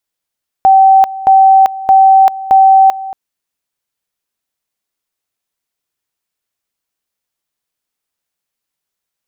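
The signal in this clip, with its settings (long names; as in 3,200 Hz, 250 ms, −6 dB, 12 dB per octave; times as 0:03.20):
tone at two levels in turn 771 Hz −2.5 dBFS, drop 17.5 dB, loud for 0.39 s, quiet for 0.23 s, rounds 4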